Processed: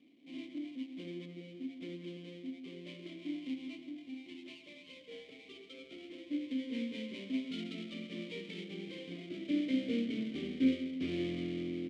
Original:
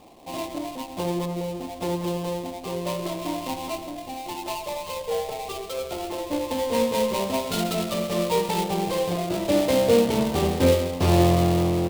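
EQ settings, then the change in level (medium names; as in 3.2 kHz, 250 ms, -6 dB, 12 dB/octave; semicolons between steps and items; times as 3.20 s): vowel filter i; high-pass 84 Hz; low-pass 8.5 kHz 12 dB/octave; -2.0 dB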